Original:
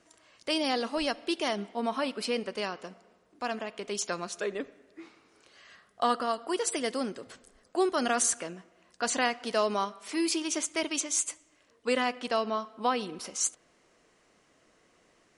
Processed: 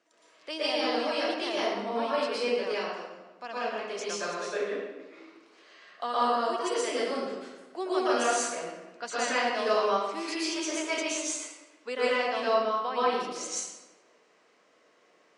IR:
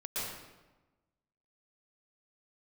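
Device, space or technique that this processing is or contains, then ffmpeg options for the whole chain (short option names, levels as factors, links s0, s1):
supermarket ceiling speaker: -filter_complex "[0:a]highpass=330,lowpass=6100[s0];[1:a]atrim=start_sample=2205[s1];[s0][s1]afir=irnorm=-1:irlink=0,volume=0.891"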